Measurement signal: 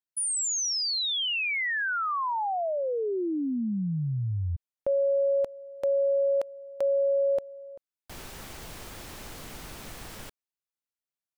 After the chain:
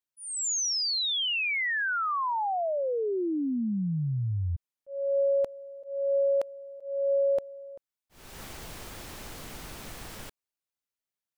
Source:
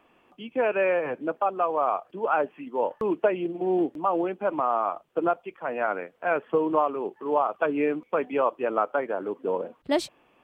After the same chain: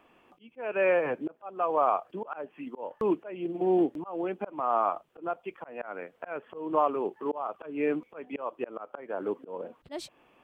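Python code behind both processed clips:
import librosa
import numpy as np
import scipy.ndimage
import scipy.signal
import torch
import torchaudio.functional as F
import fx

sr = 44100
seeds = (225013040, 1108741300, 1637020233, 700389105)

y = fx.auto_swell(x, sr, attack_ms=328.0)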